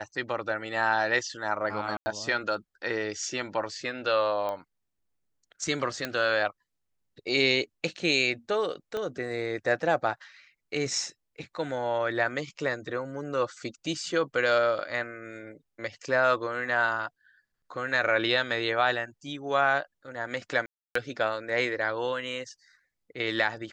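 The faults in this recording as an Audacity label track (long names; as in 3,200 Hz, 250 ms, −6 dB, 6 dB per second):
1.970000	2.060000	drop-out 90 ms
4.490000	4.490000	click −21 dBFS
6.050000	6.050000	click −15 dBFS
8.970000	8.970000	click −20 dBFS
20.660000	20.950000	drop-out 294 ms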